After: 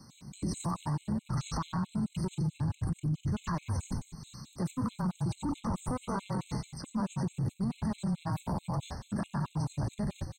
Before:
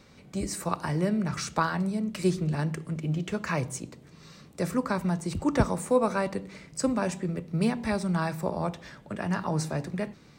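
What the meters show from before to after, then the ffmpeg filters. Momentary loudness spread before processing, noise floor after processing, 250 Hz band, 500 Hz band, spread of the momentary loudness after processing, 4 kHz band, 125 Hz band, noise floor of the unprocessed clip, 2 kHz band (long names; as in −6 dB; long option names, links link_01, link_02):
9 LU, −62 dBFS, −5.0 dB, −14.0 dB, 5 LU, −6.5 dB, −1.5 dB, −53 dBFS, −13.5 dB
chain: -filter_complex "[0:a]highshelf=frequency=9000:gain=10,acrossover=split=120[link_01][link_02];[link_02]volume=23.5dB,asoftclip=hard,volume=-23.5dB[link_03];[link_01][link_03]amix=inputs=2:normalize=0,acrossover=split=3700[link_04][link_05];[link_05]acompressor=threshold=-53dB:ratio=4:attack=1:release=60[link_06];[link_04][link_06]amix=inputs=2:normalize=0,equalizer=frequency=125:width_type=o:width=1:gain=9,equalizer=frequency=250:width_type=o:width=1:gain=7,equalizer=frequency=500:width_type=o:width=1:gain=-9,equalizer=frequency=1000:width_type=o:width=1:gain=9,equalizer=frequency=2000:width_type=o:width=1:gain=-10,equalizer=frequency=4000:width_type=o:width=1:gain=4,equalizer=frequency=8000:width_type=o:width=1:gain=10,asplit=2[link_07][link_08];[link_08]asplit=7[link_09][link_10][link_11][link_12][link_13][link_14][link_15];[link_09]adelay=91,afreqshift=-31,volume=-4dB[link_16];[link_10]adelay=182,afreqshift=-62,volume=-9.4dB[link_17];[link_11]adelay=273,afreqshift=-93,volume=-14.7dB[link_18];[link_12]adelay=364,afreqshift=-124,volume=-20.1dB[link_19];[link_13]adelay=455,afreqshift=-155,volume=-25.4dB[link_20];[link_14]adelay=546,afreqshift=-186,volume=-30.8dB[link_21];[link_15]adelay=637,afreqshift=-217,volume=-36.1dB[link_22];[link_16][link_17][link_18][link_19][link_20][link_21][link_22]amix=inputs=7:normalize=0[link_23];[link_07][link_23]amix=inputs=2:normalize=0,agate=range=-11dB:threshold=-32dB:ratio=16:detection=peak,acompressor=threshold=-29dB:ratio=6,alimiter=level_in=8.5dB:limit=-24dB:level=0:latency=1:release=24,volume=-8.5dB,afftfilt=real='re*gt(sin(2*PI*4.6*pts/sr)*(1-2*mod(floor(b*sr/1024/2100),2)),0)':imag='im*gt(sin(2*PI*4.6*pts/sr)*(1-2*mod(floor(b*sr/1024/2100),2)),0)':win_size=1024:overlap=0.75,volume=8dB"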